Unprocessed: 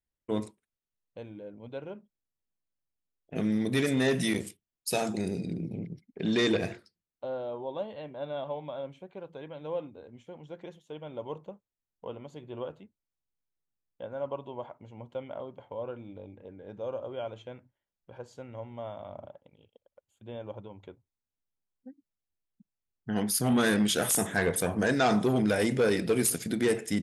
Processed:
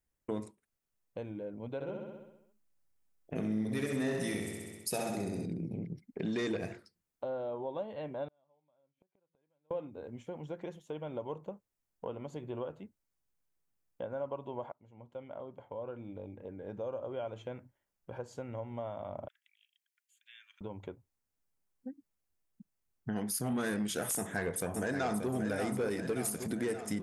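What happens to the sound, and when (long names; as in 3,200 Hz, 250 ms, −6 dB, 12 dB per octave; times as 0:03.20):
0:01.74–0:05.46: repeating echo 65 ms, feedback 60%, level −4 dB
0:08.28–0:09.71: gate with flip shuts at −40 dBFS, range −42 dB
0:14.72–0:17.38: fade in, from −20 dB
0:19.28–0:20.61: Butterworth high-pass 1,700 Hz 48 dB per octave
0:24.16–0:25.30: delay throw 580 ms, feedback 55%, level −6.5 dB
whole clip: parametric band 3,600 Hz −6 dB 1 octave; downward compressor 2.5 to 1, threshold −44 dBFS; level +5.5 dB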